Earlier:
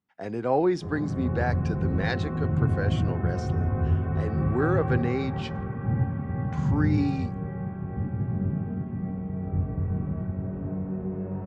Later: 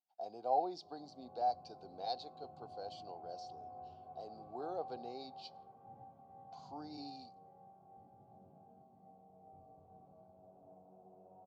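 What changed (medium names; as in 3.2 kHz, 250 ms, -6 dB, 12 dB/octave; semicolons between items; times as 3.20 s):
background -8.0 dB; master: add two resonant band-passes 1.8 kHz, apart 2.6 oct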